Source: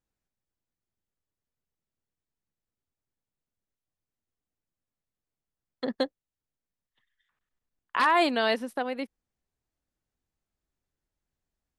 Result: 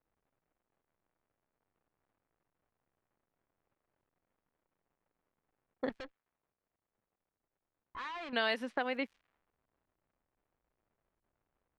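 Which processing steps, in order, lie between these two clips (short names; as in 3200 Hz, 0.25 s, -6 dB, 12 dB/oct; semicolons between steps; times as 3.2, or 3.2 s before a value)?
low-pass opened by the level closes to 510 Hz, open at -23 dBFS; crackle 280/s -57 dBFS; compressor 5:1, threshold -29 dBFS, peak gain reduction 10 dB; 5.89–8.33 tube stage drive 42 dB, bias 0.75; bell 2200 Hz +7.5 dB 2.1 oct; low-pass opened by the level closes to 720 Hz, open at -30.5 dBFS; gain -2.5 dB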